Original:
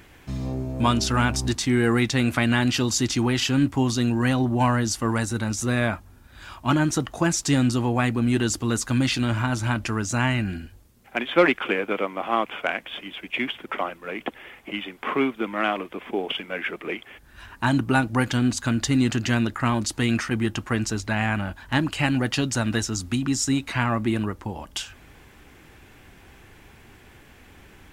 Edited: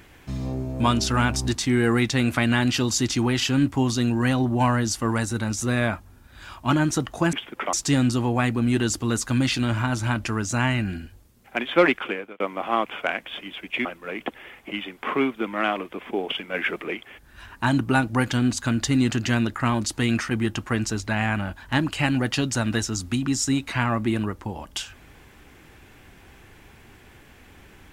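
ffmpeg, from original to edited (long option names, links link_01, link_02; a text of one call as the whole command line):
ffmpeg -i in.wav -filter_complex "[0:a]asplit=7[link_01][link_02][link_03][link_04][link_05][link_06][link_07];[link_01]atrim=end=7.332[link_08];[link_02]atrim=start=13.448:end=13.852[link_09];[link_03]atrim=start=7.328:end=12,asetpts=PTS-STARTPTS,afade=type=out:start_time=4.202:duration=0.47[link_10];[link_04]atrim=start=12:end=13.452,asetpts=PTS-STARTPTS,afade=type=in:duration=0.004:curve=hsin[link_11];[link_05]atrim=start=13.848:end=16.542[link_12];[link_06]atrim=start=16.538:end=16.842,asetpts=PTS-STARTPTS,volume=3.5dB[link_13];[link_07]atrim=start=16.838[link_14];[link_08][link_09]acrossfade=duration=0.004:curve1=hsin:curve2=hsin[link_15];[link_10][link_11]concat=n=2:v=0:a=1[link_16];[link_15][link_16]acrossfade=duration=0.004:curve1=hsin:curve2=hsin[link_17];[link_17][link_12]acrossfade=duration=0.004:curve1=hsin:curve2=hsin[link_18];[link_18][link_13]acrossfade=duration=0.004:curve1=hsin:curve2=hsin[link_19];[link_19][link_14]acrossfade=duration=0.004:curve1=hsin:curve2=hsin" out.wav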